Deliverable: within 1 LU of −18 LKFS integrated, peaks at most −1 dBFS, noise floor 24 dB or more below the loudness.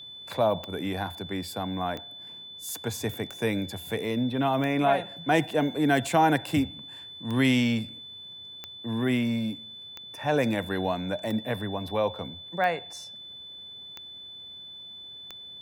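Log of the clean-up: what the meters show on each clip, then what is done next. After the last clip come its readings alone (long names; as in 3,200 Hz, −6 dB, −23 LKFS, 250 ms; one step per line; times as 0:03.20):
number of clicks 12; interfering tone 3,500 Hz; level of the tone −41 dBFS; integrated loudness −28.0 LKFS; sample peak −9.0 dBFS; target loudness −18.0 LKFS
→ click removal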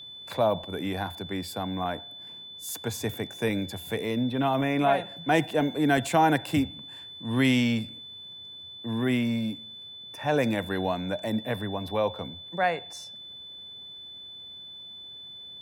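number of clicks 0; interfering tone 3,500 Hz; level of the tone −41 dBFS
→ notch filter 3,500 Hz, Q 30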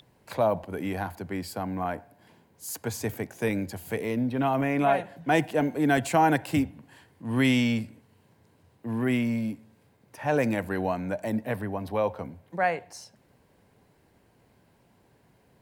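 interfering tone none found; integrated loudness −28.0 LKFS; sample peak −9.0 dBFS; target loudness −18.0 LKFS
→ level +10 dB
brickwall limiter −1 dBFS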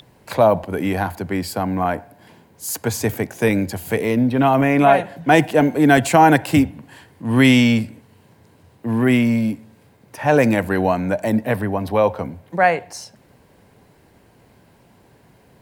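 integrated loudness −18.0 LKFS; sample peak −1.0 dBFS; background noise floor −54 dBFS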